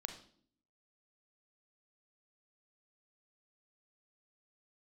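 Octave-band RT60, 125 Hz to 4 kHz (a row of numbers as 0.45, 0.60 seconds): 0.80, 0.85, 0.65, 0.50, 0.45, 0.50 seconds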